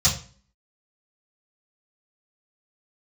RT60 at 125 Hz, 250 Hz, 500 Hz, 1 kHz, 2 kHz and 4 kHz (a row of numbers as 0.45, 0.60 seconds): 0.50, 0.60, 0.40, 0.40, 0.40, 0.35 seconds